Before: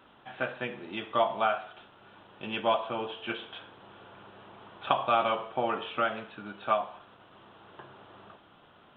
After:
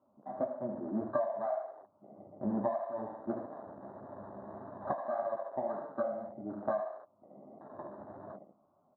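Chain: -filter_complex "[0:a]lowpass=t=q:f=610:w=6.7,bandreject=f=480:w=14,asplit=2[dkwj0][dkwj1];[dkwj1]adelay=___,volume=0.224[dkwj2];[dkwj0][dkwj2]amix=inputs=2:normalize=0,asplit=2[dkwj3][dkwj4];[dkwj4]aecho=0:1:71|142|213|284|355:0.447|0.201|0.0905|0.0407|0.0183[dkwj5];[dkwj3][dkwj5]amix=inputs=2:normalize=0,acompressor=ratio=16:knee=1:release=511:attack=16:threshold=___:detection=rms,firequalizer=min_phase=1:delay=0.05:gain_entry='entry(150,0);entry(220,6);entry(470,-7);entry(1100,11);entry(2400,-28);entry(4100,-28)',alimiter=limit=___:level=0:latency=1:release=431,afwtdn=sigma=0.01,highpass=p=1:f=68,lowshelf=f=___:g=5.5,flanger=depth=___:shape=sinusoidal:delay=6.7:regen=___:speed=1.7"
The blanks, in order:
19, 0.0562, 0.178, 380, 8.5, -26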